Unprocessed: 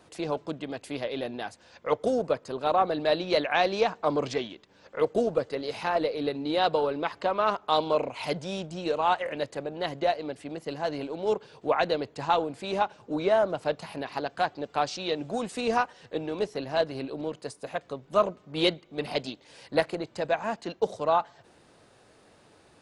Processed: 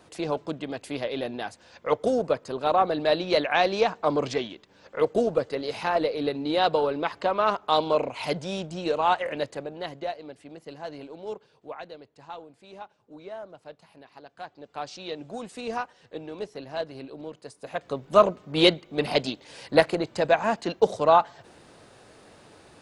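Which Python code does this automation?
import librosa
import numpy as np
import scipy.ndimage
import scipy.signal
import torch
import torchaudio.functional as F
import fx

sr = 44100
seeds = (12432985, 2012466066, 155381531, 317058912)

y = fx.gain(x, sr, db=fx.line((9.4, 2.0), (10.13, -7.0), (11.15, -7.0), (11.92, -16.0), (14.22, -16.0), (14.98, -5.5), (17.51, -5.5), (17.96, 6.0)))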